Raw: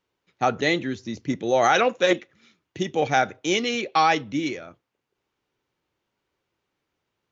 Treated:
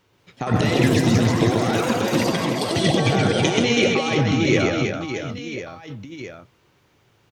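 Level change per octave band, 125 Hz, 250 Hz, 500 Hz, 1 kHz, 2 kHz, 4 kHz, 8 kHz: +16.0 dB, +8.5 dB, +3.5 dB, −3.0 dB, +2.0 dB, +5.0 dB, can't be measured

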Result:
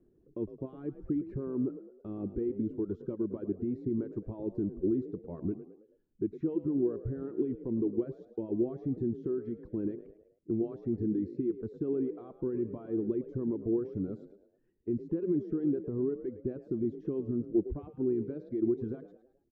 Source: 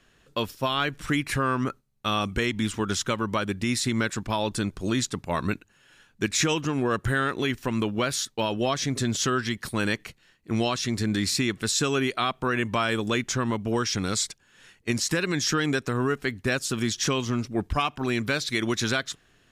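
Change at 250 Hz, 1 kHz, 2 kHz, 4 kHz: −4.0 dB, −28.5 dB, below −35 dB, below −40 dB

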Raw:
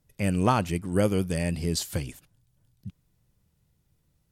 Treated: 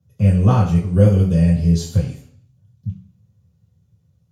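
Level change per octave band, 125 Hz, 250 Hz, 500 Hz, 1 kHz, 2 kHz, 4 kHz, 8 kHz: +15.0 dB, +10.0 dB, +5.5 dB, +1.0 dB, can't be measured, −1.5 dB, −2.0 dB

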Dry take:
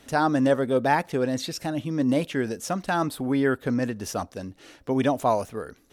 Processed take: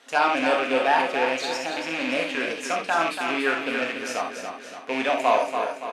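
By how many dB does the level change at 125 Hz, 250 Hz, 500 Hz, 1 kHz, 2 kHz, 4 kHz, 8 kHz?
−19.5, −6.5, +0.5, +4.0, +7.5, +7.0, 0.0 decibels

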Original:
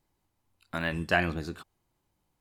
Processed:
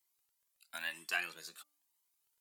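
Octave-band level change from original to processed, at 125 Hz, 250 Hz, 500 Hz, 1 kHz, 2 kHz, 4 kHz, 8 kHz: −35.0, −27.5, −21.0, −15.0, −8.0, −4.5, +3.5 decibels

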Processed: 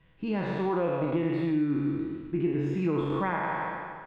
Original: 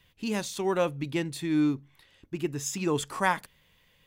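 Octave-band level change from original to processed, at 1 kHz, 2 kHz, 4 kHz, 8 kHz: +0.5 dB, −2.0 dB, below −10 dB, below −30 dB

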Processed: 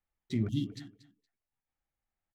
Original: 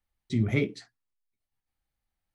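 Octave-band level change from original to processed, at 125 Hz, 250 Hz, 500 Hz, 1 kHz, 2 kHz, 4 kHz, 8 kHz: −5.5 dB, −4.0 dB, −12.0 dB, below −10 dB, −17.0 dB, −3.0 dB, can't be measured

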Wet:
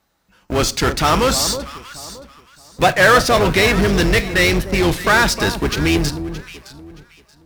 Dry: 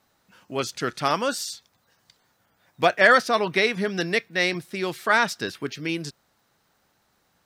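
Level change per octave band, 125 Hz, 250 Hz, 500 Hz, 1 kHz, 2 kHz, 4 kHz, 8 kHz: +15.5, +11.0, +7.5, +6.5, +6.0, +9.5, +13.5 decibels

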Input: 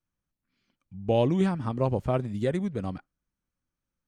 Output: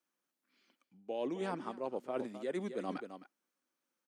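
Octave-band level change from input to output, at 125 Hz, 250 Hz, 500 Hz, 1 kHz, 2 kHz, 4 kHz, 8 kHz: −23.5 dB, −13.0 dB, −10.0 dB, −8.5 dB, −7.0 dB, −10.0 dB, can't be measured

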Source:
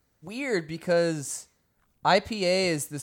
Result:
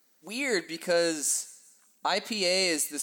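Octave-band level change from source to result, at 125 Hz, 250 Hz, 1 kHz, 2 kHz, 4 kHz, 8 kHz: −12.5, −3.5, −6.0, 0.0, +3.0, +6.5 decibels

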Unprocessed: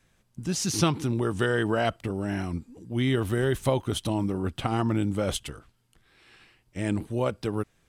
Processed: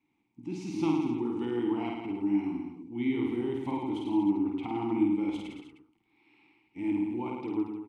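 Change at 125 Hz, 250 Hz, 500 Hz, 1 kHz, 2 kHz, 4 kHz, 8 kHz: −14.5 dB, +1.0 dB, −7.0 dB, −5.5 dB, −12.5 dB, −14.5 dB, below −20 dB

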